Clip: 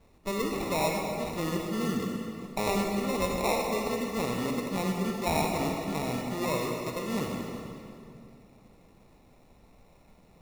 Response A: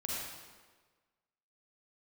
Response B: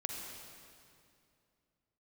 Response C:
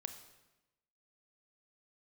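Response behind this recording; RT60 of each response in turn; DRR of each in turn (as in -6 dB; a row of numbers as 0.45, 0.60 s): B; 1.4, 2.5, 1.0 s; -5.0, 1.0, 7.5 dB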